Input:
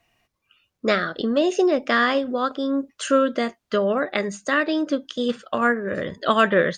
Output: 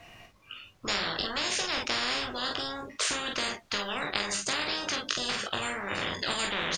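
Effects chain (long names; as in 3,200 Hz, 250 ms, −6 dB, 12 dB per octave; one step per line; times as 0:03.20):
high-shelf EQ 7,900 Hz −9.5 dB
on a send: ambience of single reflections 20 ms −5 dB, 44 ms −7 dB, 54 ms −11.5 dB
on the sum: every bin compressed towards the loudest bin 10 to 1
level −4.5 dB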